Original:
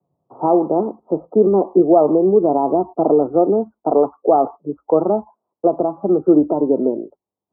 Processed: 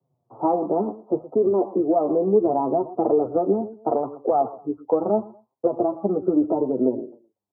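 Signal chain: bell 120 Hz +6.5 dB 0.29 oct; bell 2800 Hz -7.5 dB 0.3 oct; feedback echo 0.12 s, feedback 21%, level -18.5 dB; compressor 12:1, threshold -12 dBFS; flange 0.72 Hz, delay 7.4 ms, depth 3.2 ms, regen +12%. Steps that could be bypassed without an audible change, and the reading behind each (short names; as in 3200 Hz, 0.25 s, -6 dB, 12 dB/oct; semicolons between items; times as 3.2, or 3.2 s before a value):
bell 2800 Hz: input band ends at 1300 Hz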